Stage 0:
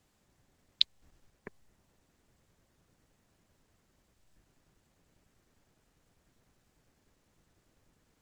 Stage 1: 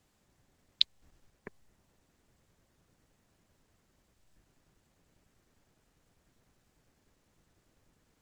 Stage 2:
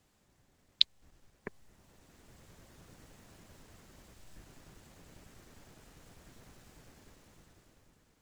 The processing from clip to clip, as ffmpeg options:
-af anull
-af "dynaudnorm=f=280:g=9:m=13dB,volume=1dB"

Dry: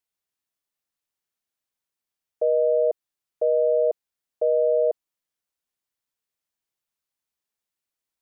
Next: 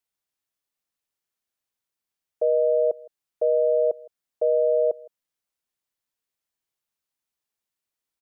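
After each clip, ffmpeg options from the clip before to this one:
-filter_complex "[0:a]asplit=2[a][b];[b]adelay=163.3,volume=-23dB,highshelf=f=4k:g=-3.67[c];[a][c]amix=inputs=2:normalize=0"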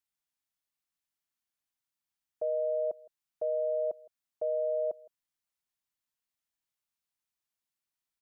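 -af "equalizer=f=460:w=2.4:g=-11.5,volume=-4dB"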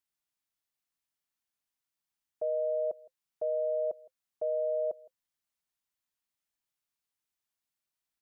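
-af "bandreject=f=520:w=17"

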